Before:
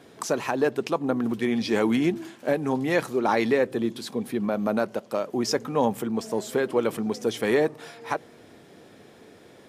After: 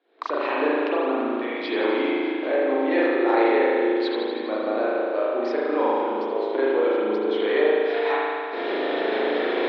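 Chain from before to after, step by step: recorder AGC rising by 59 dB/s; gate -29 dBFS, range -17 dB; Chebyshev band-pass 300–4100 Hz, order 4; overloaded stage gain 11.5 dB; spring tank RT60 2.3 s, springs 37 ms, chirp 50 ms, DRR -7.5 dB; gain -4.5 dB

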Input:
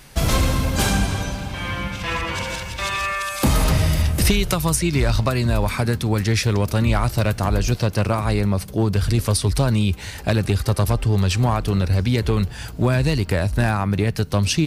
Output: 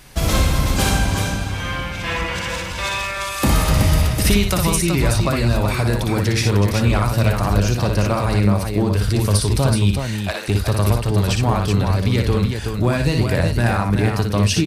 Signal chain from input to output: 9.99–10.48 HPF 720 Hz 12 dB/oct; tapped delay 59/375 ms -4.5/-5.5 dB; on a send at -14 dB: reverb RT60 0.45 s, pre-delay 3 ms

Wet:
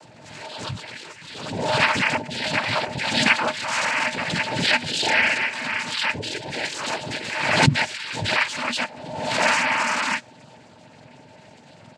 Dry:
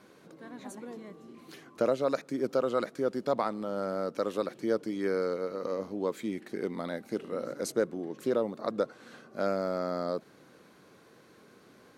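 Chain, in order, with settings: spectrum mirrored in octaves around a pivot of 970 Hz; comb 1.9 ms, depth 95%; noise vocoder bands 8; small resonant body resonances 240/620/890 Hz, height 11 dB, ringing for 90 ms; backwards sustainer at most 43 dB/s; gain +7.5 dB

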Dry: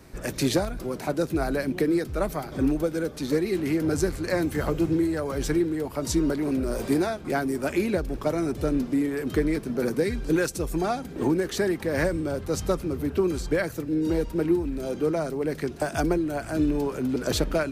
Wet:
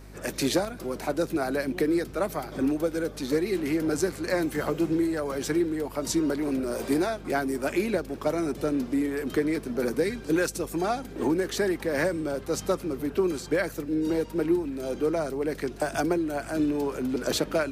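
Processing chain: Bessel high-pass 220 Hz, order 2; hum 50 Hz, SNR 19 dB

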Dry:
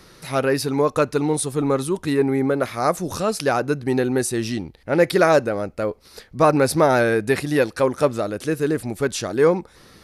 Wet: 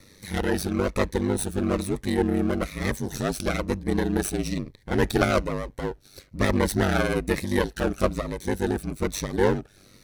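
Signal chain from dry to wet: minimum comb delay 0.51 ms; ring modulator 49 Hz; cascading phaser falling 1.1 Hz

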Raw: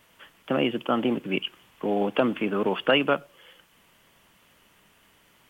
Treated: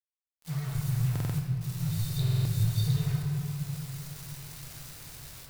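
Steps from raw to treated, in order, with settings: FFT band-reject 170–3600 Hz; 0.75–1.38 tone controls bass +14 dB, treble +14 dB; compressor 6:1, threshold -50 dBFS, peak gain reduction 21 dB; 1.9–3.07 sample leveller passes 1; AGC gain up to 13.5 dB; bit-crush 8-bit; shoebox room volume 120 m³, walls hard, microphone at 0.53 m; stuck buffer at 1.11/2.22, samples 2048, times 4; gain +4 dB

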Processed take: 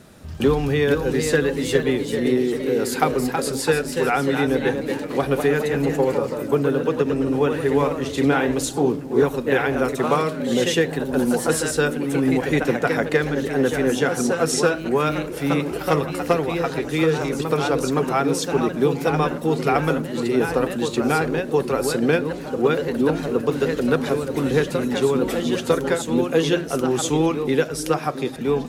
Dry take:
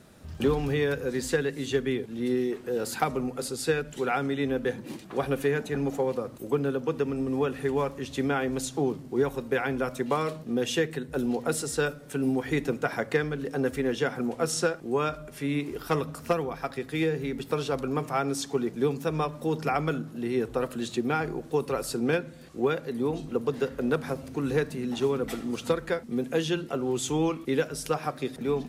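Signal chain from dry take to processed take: echoes that change speed 0.492 s, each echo +1 st, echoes 3, each echo -6 dB; delay with a stepping band-pass 0.671 s, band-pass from 280 Hz, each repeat 1.4 oct, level -10.5 dB; gain +6.5 dB

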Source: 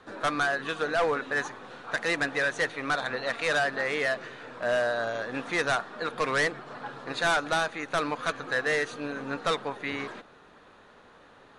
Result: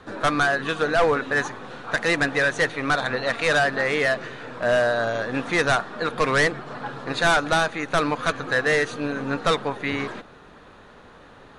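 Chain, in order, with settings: low shelf 180 Hz +8.5 dB; gain +5.5 dB

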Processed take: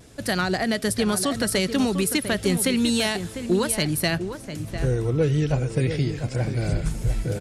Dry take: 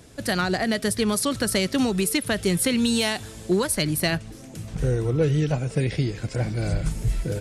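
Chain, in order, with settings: 5.76–6.46 crackle 42/s -43 dBFS; vibrato 0.5 Hz 12 cents; outdoor echo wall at 120 m, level -9 dB

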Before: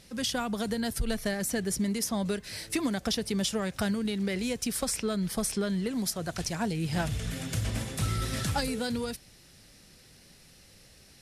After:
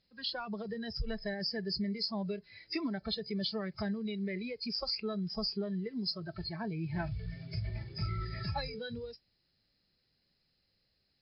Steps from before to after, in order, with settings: nonlinear frequency compression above 3900 Hz 4:1; spectral noise reduction 17 dB; gain -5.5 dB

